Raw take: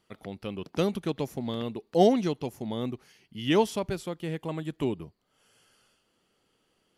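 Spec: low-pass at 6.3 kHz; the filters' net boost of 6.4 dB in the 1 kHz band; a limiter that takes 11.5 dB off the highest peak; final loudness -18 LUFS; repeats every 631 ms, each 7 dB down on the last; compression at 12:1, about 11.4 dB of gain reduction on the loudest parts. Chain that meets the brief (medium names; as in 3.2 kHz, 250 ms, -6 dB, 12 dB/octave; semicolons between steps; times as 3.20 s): low-pass 6.3 kHz; peaking EQ 1 kHz +9 dB; compression 12:1, threshold -24 dBFS; peak limiter -27.5 dBFS; feedback delay 631 ms, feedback 45%, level -7 dB; trim +20 dB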